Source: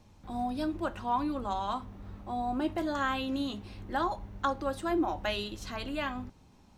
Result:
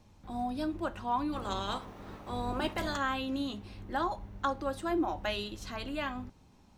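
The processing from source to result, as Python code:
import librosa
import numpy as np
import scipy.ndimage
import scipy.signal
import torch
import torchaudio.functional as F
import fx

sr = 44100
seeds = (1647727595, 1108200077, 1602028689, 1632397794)

y = fx.spec_clip(x, sr, under_db=17, at=(1.32, 2.96), fade=0.02)
y = y * librosa.db_to_amplitude(-1.5)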